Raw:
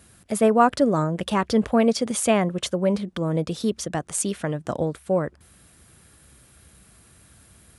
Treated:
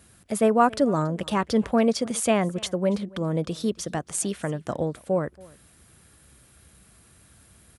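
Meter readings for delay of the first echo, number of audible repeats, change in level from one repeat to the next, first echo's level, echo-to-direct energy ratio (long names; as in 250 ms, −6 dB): 280 ms, 1, repeats not evenly spaced, −23.5 dB, −23.5 dB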